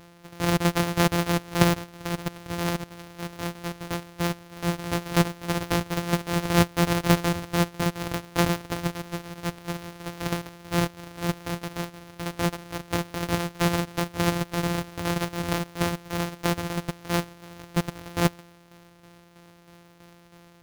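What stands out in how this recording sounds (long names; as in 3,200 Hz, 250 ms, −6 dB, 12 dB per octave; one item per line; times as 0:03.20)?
a buzz of ramps at a fixed pitch in blocks of 256 samples
tremolo saw down 3.1 Hz, depth 55%
aliases and images of a low sample rate 8,000 Hz, jitter 20%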